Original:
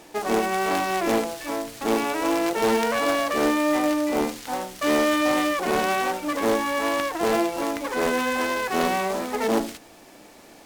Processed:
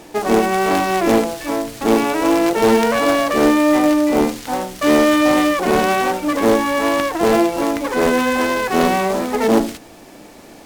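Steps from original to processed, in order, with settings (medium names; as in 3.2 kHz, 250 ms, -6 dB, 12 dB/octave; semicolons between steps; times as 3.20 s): bass shelf 440 Hz +6 dB; trim +5 dB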